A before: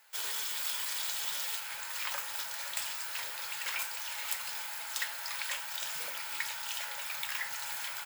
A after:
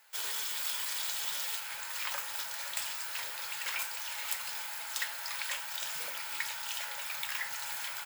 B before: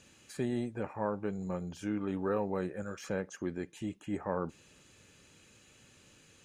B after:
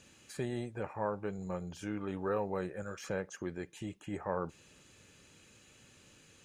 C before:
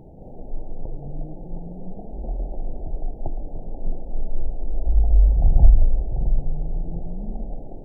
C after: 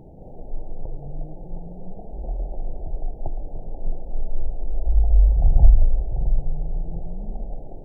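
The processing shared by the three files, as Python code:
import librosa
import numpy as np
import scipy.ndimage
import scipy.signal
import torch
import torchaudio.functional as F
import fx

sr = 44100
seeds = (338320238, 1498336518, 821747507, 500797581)

y = fx.dynamic_eq(x, sr, hz=250.0, q=1.7, threshold_db=-48.0, ratio=4.0, max_db=-7)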